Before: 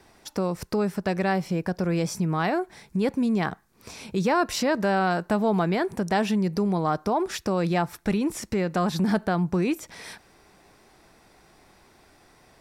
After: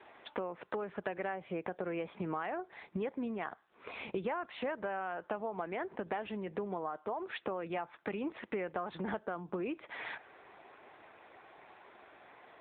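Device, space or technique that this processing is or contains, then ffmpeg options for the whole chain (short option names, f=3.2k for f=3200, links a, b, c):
voicemail: -filter_complex "[0:a]asplit=3[a][b][c];[a]afade=t=out:st=9.18:d=0.02[d];[b]equalizer=f=800:t=o:w=0.33:g=-6,equalizer=f=2k:t=o:w=0.33:g=-10,equalizer=f=5k:t=o:w=0.33:g=-9,equalizer=f=10k:t=o:w=0.33:g=-8,afade=t=in:st=9.18:d=0.02,afade=t=out:st=9.72:d=0.02[e];[c]afade=t=in:st=9.72:d=0.02[f];[d][e][f]amix=inputs=3:normalize=0,highpass=420,lowpass=3.2k,acompressor=threshold=-37dB:ratio=10,volume=4dB" -ar 8000 -c:a libopencore_amrnb -b:a 7950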